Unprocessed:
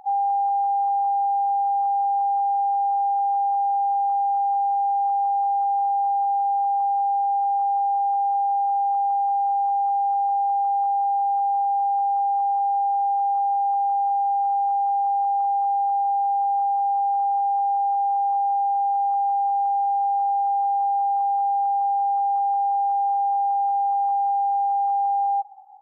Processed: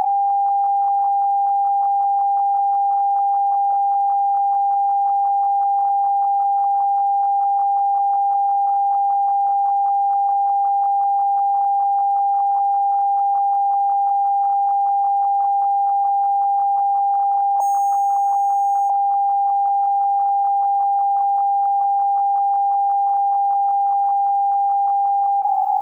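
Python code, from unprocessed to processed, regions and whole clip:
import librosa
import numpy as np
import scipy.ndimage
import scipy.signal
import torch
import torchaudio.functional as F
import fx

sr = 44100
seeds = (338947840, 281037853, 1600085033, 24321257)

y = fx.chain(x, sr, fx.bessel_highpass(hz=800.0, order=2),
    fx.resample_linear(factor=6), at=(17.6, 18.9))
y = fx.dereverb_blind(y, sr, rt60_s=1.9)
y = fx.env_flatten(y, sr, amount_pct=100)
y = y * 10.0 ** (4.0 / 20.0)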